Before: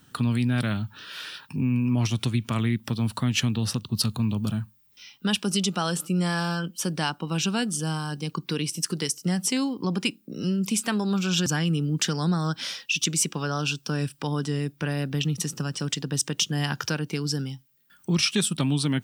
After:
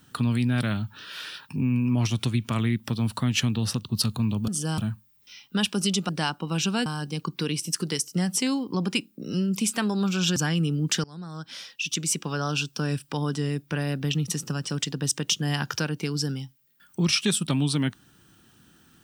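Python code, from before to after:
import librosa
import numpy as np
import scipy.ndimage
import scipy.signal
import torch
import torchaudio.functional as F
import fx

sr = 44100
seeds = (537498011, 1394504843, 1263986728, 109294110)

y = fx.edit(x, sr, fx.cut(start_s=5.79, length_s=1.1),
    fx.move(start_s=7.66, length_s=0.3, to_s=4.48),
    fx.fade_in_from(start_s=12.14, length_s=1.38, floor_db=-22.5), tone=tone)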